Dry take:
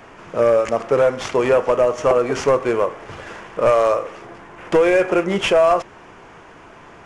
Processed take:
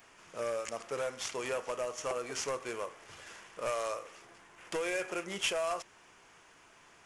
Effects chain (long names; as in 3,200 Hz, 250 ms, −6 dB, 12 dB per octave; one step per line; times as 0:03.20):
first-order pre-emphasis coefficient 0.9
level −2.5 dB